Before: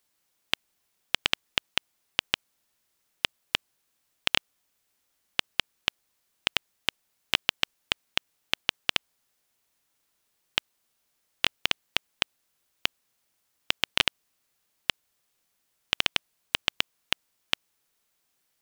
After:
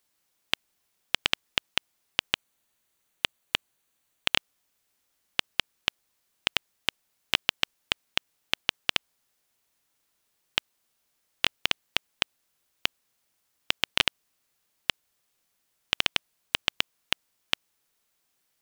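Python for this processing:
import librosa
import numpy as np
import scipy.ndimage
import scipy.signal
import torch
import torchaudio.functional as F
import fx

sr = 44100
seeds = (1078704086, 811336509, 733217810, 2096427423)

y = fx.notch(x, sr, hz=5200.0, q=7.2, at=(2.33, 4.35))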